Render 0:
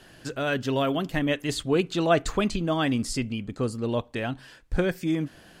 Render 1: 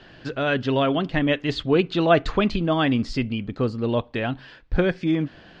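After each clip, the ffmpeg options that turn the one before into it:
ffmpeg -i in.wav -af "lowpass=frequency=4400:width=0.5412,lowpass=frequency=4400:width=1.3066,volume=4dB" out.wav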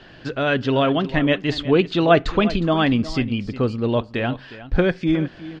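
ffmpeg -i in.wav -af "aecho=1:1:361:0.168,volume=2.5dB" out.wav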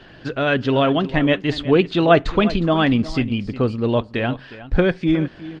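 ffmpeg -i in.wav -af "volume=1.5dB" -ar 48000 -c:a libopus -b:a 32k out.opus

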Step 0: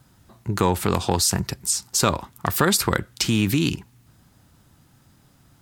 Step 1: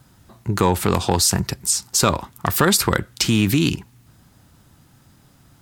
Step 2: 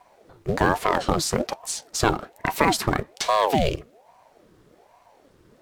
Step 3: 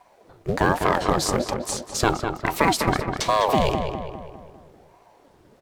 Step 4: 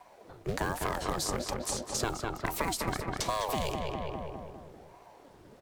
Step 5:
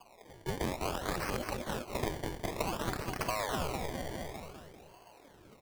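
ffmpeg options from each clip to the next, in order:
ffmpeg -i in.wav -af "acontrast=22,volume=-1.5dB" out.wav
ffmpeg -i in.wav -af "acrusher=bits=5:mode=log:mix=0:aa=0.000001,lowpass=frequency=3200:poles=1,aeval=exprs='val(0)*sin(2*PI*540*n/s+540*0.6/1.2*sin(2*PI*1.2*n/s))':channel_layout=same" out.wav
ffmpeg -i in.wav -filter_complex "[0:a]asplit=2[link_01][link_02];[link_02]adelay=202,lowpass=frequency=2800:poles=1,volume=-6dB,asplit=2[link_03][link_04];[link_04]adelay=202,lowpass=frequency=2800:poles=1,volume=0.52,asplit=2[link_05][link_06];[link_06]adelay=202,lowpass=frequency=2800:poles=1,volume=0.52,asplit=2[link_07][link_08];[link_08]adelay=202,lowpass=frequency=2800:poles=1,volume=0.52,asplit=2[link_09][link_10];[link_10]adelay=202,lowpass=frequency=2800:poles=1,volume=0.52,asplit=2[link_11][link_12];[link_12]adelay=202,lowpass=frequency=2800:poles=1,volume=0.52[link_13];[link_01][link_03][link_05][link_07][link_09][link_11][link_13]amix=inputs=7:normalize=0" out.wav
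ffmpeg -i in.wav -filter_complex "[0:a]acrossover=split=80|1200|6200[link_01][link_02][link_03][link_04];[link_01]acompressor=threshold=-39dB:ratio=4[link_05];[link_02]acompressor=threshold=-34dB:ratio=4[link_06];[link_03]acompressor=threshold=-39dB:ratio=4[link_07];[link_04]acompressor=threshold=-36dB:ratio=4[link_08];[link_05][link_06][link_07][link_08]amix=inputs=4:normalize=0" out.wav
ffmpeg -i in.wav -af "acrusher=samples=23:mix=1:aa=0.000001:lfo=1:lforange=23:lforate=0.55,volume=-2.5dB" out.wav

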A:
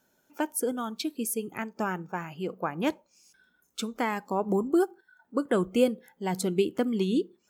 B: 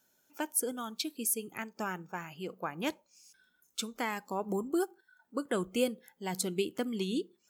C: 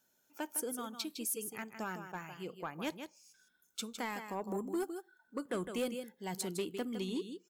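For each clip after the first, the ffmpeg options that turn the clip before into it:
ffmpeg -i in.wav -af "highshelf=frequency=2100:gain=9.5,volume=-7.5dB" out.wav
ffmpeg -i in.wav -af "aecho=1:1:158:0.335,asoftclip=type=tanh:threshold=-25dB,volume=-3.5dB" out.wav

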